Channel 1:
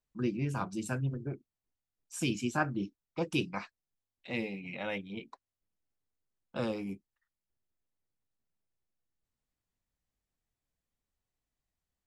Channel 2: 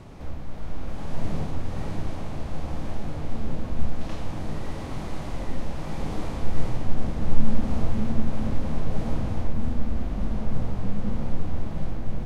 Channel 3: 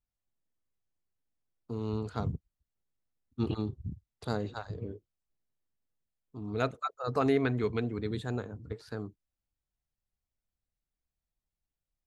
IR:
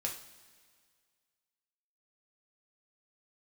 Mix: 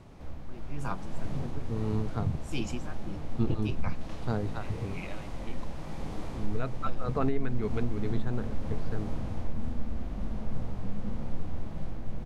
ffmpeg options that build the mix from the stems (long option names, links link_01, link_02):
-filter_complex "[0:a]acontrast=80,aeval=exprs='val(0)*pow(10,-19*(0.5-0.5*cos(2*PI*1.7*n/s))/20)':channel_layout=same,adelay=300,volume=-6.5dB[link_01];[1:a]volume=-7dB[link_02];[2:a]bass=frequency=250:gain=5,treble=frequency=4000:gain=-12,volume=-0.5dB[link_03];[link_01][link_02][link_03]amix=inputs=3:normalize=0,alimiter=limit=-17dB:level=0:latency=1:release=296"